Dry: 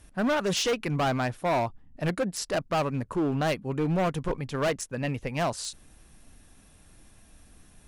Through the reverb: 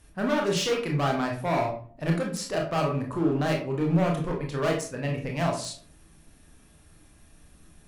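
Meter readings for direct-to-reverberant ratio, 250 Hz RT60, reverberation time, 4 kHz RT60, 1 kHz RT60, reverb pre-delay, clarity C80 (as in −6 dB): −0.5 dB, 0.60 s, 0.45 s, 0.30 s, 0.45 s, 22 ms, 11.5 dB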